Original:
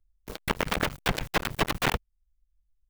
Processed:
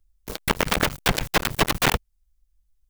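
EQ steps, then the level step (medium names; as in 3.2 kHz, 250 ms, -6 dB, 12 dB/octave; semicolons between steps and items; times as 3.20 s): tone controls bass 0 dB, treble +5 dB; +5.0 dB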